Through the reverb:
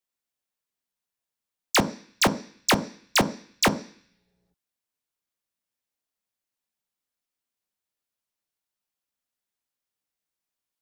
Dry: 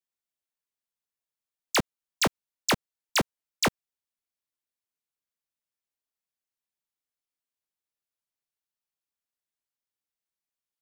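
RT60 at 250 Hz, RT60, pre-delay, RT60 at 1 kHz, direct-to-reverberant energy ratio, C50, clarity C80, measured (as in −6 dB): 0.50 s, 0.50 s, 3 ms, 0.50 s, 10.5 dB, 17.5 dB, 20.5 dB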